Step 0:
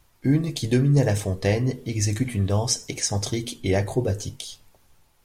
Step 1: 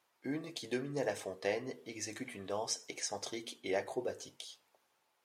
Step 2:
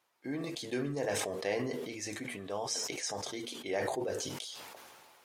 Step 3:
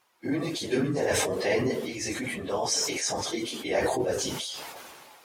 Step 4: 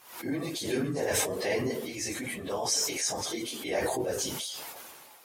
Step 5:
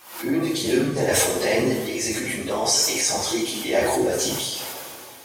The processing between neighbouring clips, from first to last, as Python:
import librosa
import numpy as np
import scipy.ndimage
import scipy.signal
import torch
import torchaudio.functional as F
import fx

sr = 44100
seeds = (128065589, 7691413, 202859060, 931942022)

y1 = scipy.signal.sosfilt(scipy.signal.butter(2, 450.0, 'highpass', fs=sr, output='sos'), x)
y1 = fx.high_shelf(y1, sr, hz=5000.0, db=-9.0)
y1 = y1 * librosa.db_to_amplitude(-8.0)
y2 = fx.sustainer(y1, sr, db_per_s=25.0)
y3 = fx.phase_scramble(y2, sr, seeds[0], window_ms=50)
y3 = y3 * librosa.db_to_amplitude(8.0)
y4 = fx.peak_eq(y3, sr, hz=14000.0, db=10.5, octaves=1.1)
y4 = fx.pre_swell(y4, sr, db_per_s=95.0)
y4 = y4 * librosa.db_to_amplitude(-4.0)
y5 = fx.rev_double_slope(y4, sr, seeds[1], early_s=0.58, late_s=3.3, knee_db=-16, drr_db=1.5)
y5 = fx.wow_flutter(y5, sr, seeds[2], rate_hz=2.1, depth_cents=26.0)
y5 = y5 * librosa.db_to_amplitude(6.5)